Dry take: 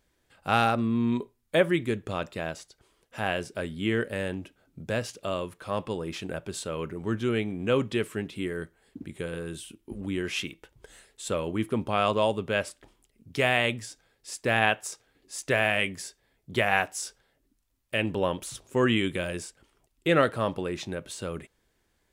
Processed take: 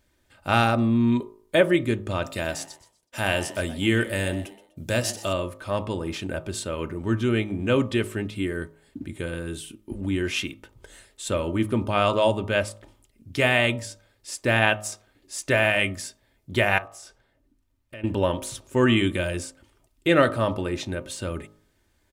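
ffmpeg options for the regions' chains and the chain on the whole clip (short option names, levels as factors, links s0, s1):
-filter_complex "[0:a]asettb=1/sr,asplit=3[s0][s1][s2];[s0]atrim=end=2.244[s3];[s1]atrim=start=2.24:end=5.33,asetpts=PTS-STARTPTS,afade=t=in:d=0.004:c=qsin,afade=t=out:st=3.086:d=0.004:c=qsin,agate=range=0.0224:threshold=0.00141:ratio=3:release=100:detection=peak,highshelf=f=4200:g=11.5,asplit=4[s4][s5][s6][s7];[s5]adelay=124,afreqshift=110,volume=0.168[s8];[s6]adelay=248,afreqshift=220,volume=0.0519[s9];[s7]adelay=372,afreqshift=330,volume=0.0162[s10];[s4][s8][s9][s10]amix=inputs=4:normalize=0,atrim=end_sample=136269[s11];[s2]atrim=start=5.326[s12];[s3][s11]acrossfade=d=0.004:c1=hsin:c2=qsin[s13];[s13][s12]acrossfade=d=0.004:c1=qsin:c2=hsin,asettb=1/sr,asplit=3[s14][s15][s16];[s14]atrim=end=16.784[s17];[s15]atrim=start=16.78:end=18.04,asetpts=PTS-STARTPTS,afade=t=in:d=0.004:c=qsin,afade=t=out:st=1.256:d=0.004:c=qsin,highshelf=f=3300:g=-9.5,acompressor=threshold=0.00447:ratio=2.5:attack=3.2:release=140:knee=1:detection=peak[s18];[s16]atrim=start=18.036[s19];[s17][s18]acrossfade=d=0.004:c1=hsin:c2=qsin[s20];[s20][s19]acrossfade=d=0.004:c1=qsin:c2=hsin,equalizer=f=100:t=o:w=1.1:g=7.5,aecho=1:1:3.3:0.39,bandreject=f=52.61:t=h:w=4,bandreject=f=105.22:t=h:w=4,bandreject=f=157.83:t=h:w=4,bandreject=f=210.44:t=h:w=4,bandreject=f=263.05:t=h:w=4,bandreject=f=315.66:t=h:w=4,bandreject=f=368.27:t=h:w=4,bandreject=f=420.88:t=h:w=4,bandreject=f=473.49:t=h:w=4,bandreject=f=526.1:t=h:w=4,bandreject=f=578.71:t=h:w=4,bandreject=f=631.32:t=h:w=4,bandreject=f=683.93:t=h:w=4,bandreject=f=736.54:t=h:w=4,bandreject=f=789.15:t=h:w=4,bandreject=f=841.76:t=h:w=4,bandreject=f=894.37:t=h:w=4,bandreject=f=946.98:t=h:w=4,bandreject=f=999.59:t=h:w=4,bandreject=f=1052.2:t=h:w=4,bandreject=f=1104.81:t=h:w=4,bandreject=f=1157.42:t=h:w=4,bandreject=f=1210.03:t=h:w=4,bandreject=f=1262.64:t=h:w=4,bandreject=f=1315.25:t=h:w=4,volume=1.41"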